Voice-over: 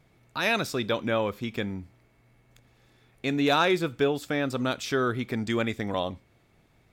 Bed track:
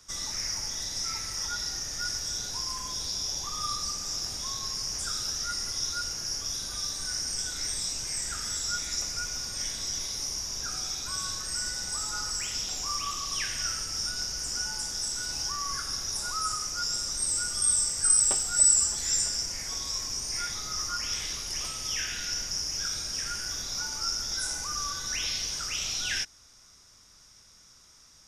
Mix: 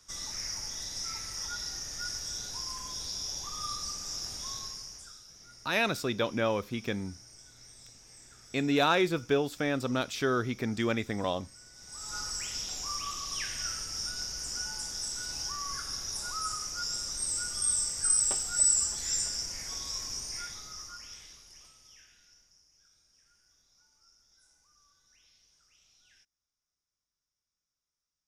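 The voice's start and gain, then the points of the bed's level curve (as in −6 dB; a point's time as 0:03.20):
5.30 s, −2.5 dB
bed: 0:04.58 −4.5 dB
0:05.28 −21.5 dB
0:11.70 −21.5 dB
0:12.16 −4 dB
0:20.17 −4 dB
0:22.69 −34 dB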